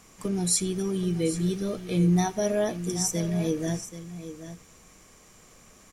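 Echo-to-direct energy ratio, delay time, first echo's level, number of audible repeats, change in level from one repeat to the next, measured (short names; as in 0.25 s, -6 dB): -12.0 dB, 85 ms, -23.0 dB, 2, no steady repeat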